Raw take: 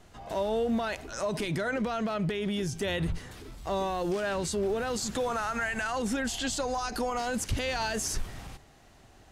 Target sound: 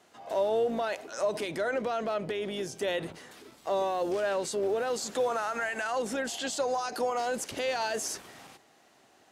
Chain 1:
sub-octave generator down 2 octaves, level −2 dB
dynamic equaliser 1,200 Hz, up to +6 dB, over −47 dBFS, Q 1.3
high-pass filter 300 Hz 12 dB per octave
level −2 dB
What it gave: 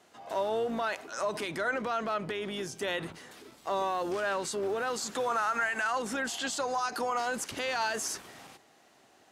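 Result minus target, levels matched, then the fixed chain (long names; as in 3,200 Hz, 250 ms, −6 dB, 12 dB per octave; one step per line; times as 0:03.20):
500 Hz band −3.0 dB
sub-octave generator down 2 octaves, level −2 dB
dynamic equaliser 560 Hz, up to +6 dB, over −47 dBFS, Q 1.3
high-pass filter 300 Hz 12 dB per octave
level −2 dB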